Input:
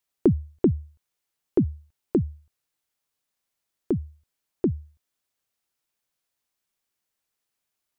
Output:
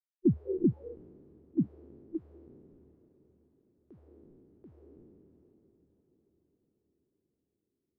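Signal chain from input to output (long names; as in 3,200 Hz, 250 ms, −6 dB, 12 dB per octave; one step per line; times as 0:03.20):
peak hold with a decay on every bin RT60 2.47 s
feedback delay with all-pass diffusion 634 ms, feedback 54%, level −12.5 dB
noise reduction from a noise print of the clip's start 26 dB
level −7 dB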